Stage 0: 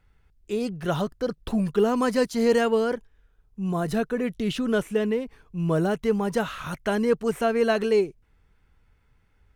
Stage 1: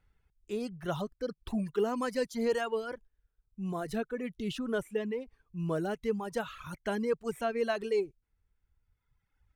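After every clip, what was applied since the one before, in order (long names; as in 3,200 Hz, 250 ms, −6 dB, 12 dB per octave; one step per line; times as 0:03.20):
reverb reduction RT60 1.7 s
level −7.5 dB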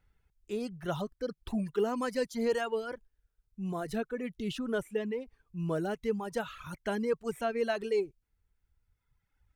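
notch filter 1,100 Hz, Q 24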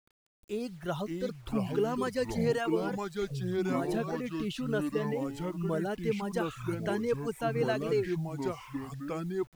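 delay with pitch and tempo change per echo 441 ms, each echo −4 semitones, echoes 2
bit-depth reduction 10 bits, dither none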